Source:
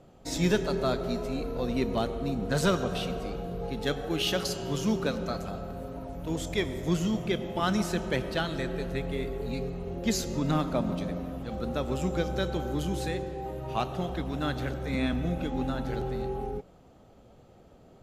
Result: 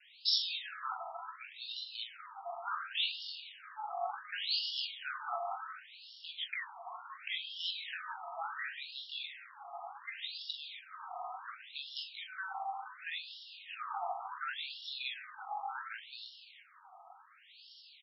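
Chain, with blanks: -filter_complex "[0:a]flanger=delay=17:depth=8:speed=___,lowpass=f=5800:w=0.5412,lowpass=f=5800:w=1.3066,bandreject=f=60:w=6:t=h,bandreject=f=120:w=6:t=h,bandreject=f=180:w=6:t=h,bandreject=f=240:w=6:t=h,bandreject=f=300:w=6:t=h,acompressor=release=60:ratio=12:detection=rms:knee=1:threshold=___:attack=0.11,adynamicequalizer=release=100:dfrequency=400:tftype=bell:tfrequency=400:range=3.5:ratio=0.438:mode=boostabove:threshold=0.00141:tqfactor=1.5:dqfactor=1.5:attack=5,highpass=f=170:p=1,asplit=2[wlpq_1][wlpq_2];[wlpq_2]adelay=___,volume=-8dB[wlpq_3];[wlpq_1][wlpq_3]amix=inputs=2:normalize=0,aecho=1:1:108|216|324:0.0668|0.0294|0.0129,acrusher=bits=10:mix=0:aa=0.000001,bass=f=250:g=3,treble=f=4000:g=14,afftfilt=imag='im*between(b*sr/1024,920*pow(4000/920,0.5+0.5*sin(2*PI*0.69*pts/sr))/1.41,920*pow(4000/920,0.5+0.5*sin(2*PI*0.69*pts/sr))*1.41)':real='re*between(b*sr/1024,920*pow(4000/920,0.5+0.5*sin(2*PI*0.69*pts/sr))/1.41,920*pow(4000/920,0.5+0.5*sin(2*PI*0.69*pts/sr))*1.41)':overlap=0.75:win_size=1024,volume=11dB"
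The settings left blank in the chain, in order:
0.49, -35dB, 43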